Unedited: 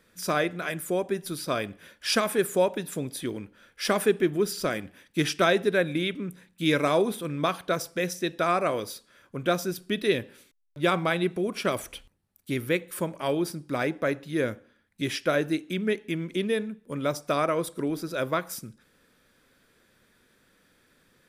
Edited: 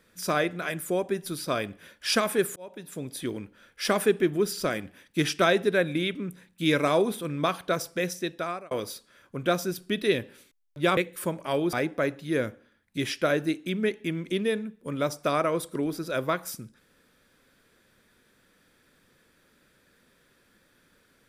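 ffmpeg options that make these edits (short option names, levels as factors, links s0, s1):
-filter_complex "[0:a]asplit=5[s0][s1][s2][s3][s4];[s0]atrim=end=2.56,asetpts=PTS-STARTPTS,afade=t=out:st=2.556:d=0.004:c=hsin[s5];[s1]atrim=start=2.56:end=8.71,asetpts=PTS-STARTPTS,afade=t=in:d=0.71,afade=t=out:st=5.33:d=0.82:c=qsin[s6];[s2]atrim=start=8.71:end=10.972,asetpts=PTS-STARTPTS,afade=t=in:d=0.004:c=hsin[s7];[s3]atrim=start=12.718:end=13.482[s8];[s4]atrim=start=13.768[s9];[s5][s6][s7]concat=n=3:v=0:a=1[s10];[s10][s8]acrossfade=d=0.004:c1=hsin:c2=hsin[s11];[s11][s9]acrossfade=d=0.004:c1=hsin:c2=hsin"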